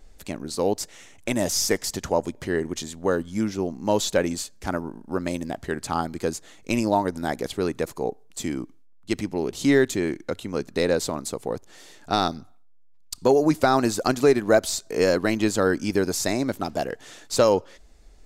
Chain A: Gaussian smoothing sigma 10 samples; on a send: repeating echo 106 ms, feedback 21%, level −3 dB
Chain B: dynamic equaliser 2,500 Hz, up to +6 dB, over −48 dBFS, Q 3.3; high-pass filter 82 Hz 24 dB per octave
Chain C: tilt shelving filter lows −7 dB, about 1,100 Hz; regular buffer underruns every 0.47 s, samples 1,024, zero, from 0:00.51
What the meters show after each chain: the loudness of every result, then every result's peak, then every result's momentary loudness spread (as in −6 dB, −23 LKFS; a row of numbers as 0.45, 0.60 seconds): −25.5, −24.5, −25.5 LKFS; −7.0, −4.0, −4.0 dBFS; 13, 12, 12 LU